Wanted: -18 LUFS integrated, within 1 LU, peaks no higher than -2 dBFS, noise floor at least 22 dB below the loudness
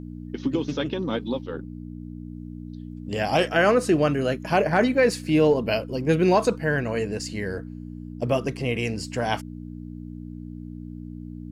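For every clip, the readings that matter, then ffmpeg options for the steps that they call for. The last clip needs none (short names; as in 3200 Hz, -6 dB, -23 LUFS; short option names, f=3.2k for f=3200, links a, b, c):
hum 60 Hz; harmonics up to 300 Hz; hum level -34 dBFS; loudness -24.0 LUFS; peak -9.0 dBFS; loudness target -18.0 LUFS
-> -af "bandreject=f=60:t=h:w=4,bandreject=f=120:t=h:w=4,bandreject=f=180:t=h:w=4,bandreject=f=240:t=h:w=4,bandreject=f=300:t=h:w=4"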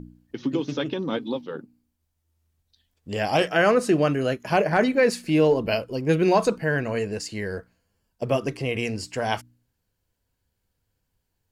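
hum none; loudness -24.0 LUFS; peak -8.5 dBFS; loudness target -18.0 LUFS
-> -af "volume=6dB"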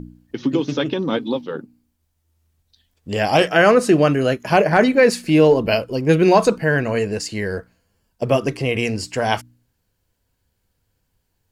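loudness -18.0 LUFS; peak -2.5 dBFS; noise floor -71 dBFS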